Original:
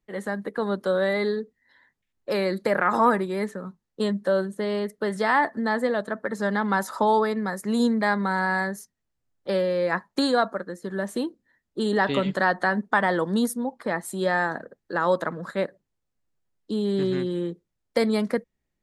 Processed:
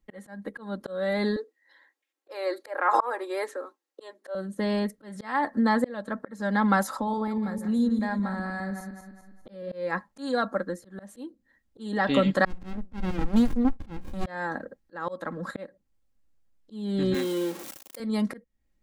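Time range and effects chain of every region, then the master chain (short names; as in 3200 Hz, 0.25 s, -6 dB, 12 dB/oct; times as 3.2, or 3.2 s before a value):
1.36–4.35 steep high-pass 300 Hz 72 dB/oct + dynamic EQ 910 Hz, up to +7 dB, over -35 dBFS, Q 1.6
6.97–9.72 regenerating reverse delay 0.102 s, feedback 52%, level -8.5 dB + low shelf 410 Hz +9 dB + compressor 1.5:1, threshold -52 dBFS
12.45–14.26 notches 60/120/180 Hz + running maximum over 65 samples
17.14–18 zero-crossing step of -34.5 dBFS + HPF 320 Hz + high shelf 6300 Hz +9 dB
whole clip: low shelf 140 Hz +8.5 dB; comb 3.7 ms, depth 49%; auto swell 0.393 s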